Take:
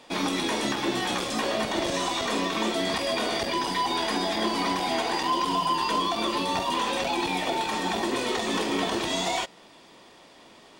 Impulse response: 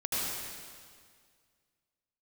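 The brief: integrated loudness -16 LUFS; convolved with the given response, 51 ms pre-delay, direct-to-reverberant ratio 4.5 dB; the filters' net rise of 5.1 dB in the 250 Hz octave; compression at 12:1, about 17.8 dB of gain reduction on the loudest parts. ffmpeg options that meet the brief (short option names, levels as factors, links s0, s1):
-filter_complex "[0:a]equalizer=f=250:t=o:g=6.5,acompressor=threshold=0.0126:ratio=12,asplit=2[s0][s1];[1:a]atrim=start_sample=2205,adelay=51[s2];[s1][s2]afir=irnorm=-1:irlink=0,volume=0.251[s3];[s0][s3]amix=inputs=2:normalize=0,volume=15"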